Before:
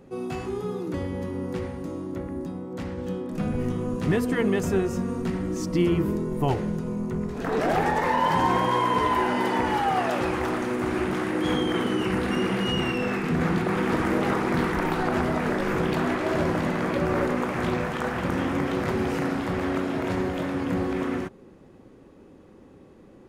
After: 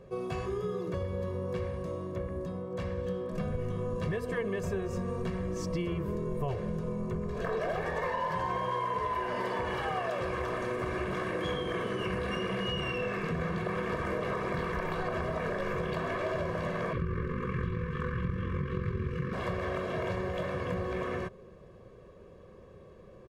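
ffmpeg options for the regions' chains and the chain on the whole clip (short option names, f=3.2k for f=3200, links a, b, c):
-filter_complex "[0:a]asettb=1/sr,asplit=3[a][b][c];[a]atrim=end=16.934[d];[b]atrim=start=16.93:end=19.33,asetpts=PTS-STARTPTS,afade=t=in:d=0.004:c=qsin,afade=t=out:st=2.396:d=0.004:c=qsin,asuperstop=centerf=720:order=12:qfactor=1.4,tremolo=f=44:d=0.519,bass=f=250:g=11,treble=f=4k:g=-10[e];[c]atrim=start=19.326[f];[d][e]acrossfade=d=0.004:c1=hsin:c2=qsin[g];[g][f]acrossfade=d=0.004:c1=qsin:c2=hsin,highshelf=f=6k:g=-9.5,aecho=1:1:1.8:0.86,acompressor=threshold=-27dB:ratio=6,volume=-2.5dB"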